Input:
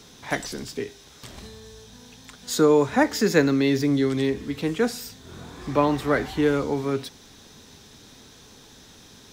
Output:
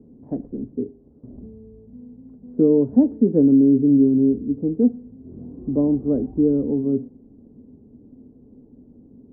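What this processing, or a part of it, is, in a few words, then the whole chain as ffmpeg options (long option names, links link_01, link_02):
under water: -af "lowpass=frequency=500:width=0.5412,lowpass=frequency=500:width=1.3066,equalizer=frequency=250:width_type=o:width=0.49:gain=11.5"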